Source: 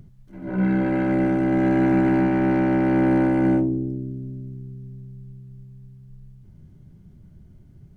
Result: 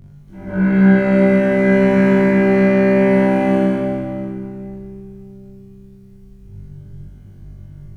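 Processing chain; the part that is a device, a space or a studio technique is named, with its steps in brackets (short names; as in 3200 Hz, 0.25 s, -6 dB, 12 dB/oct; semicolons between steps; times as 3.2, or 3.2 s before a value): tunnel (flutter echo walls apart 3.5 m, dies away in 0.8 s; reverb RT60 2.4 s, pre-delay 36 ms, DRR -4 dB)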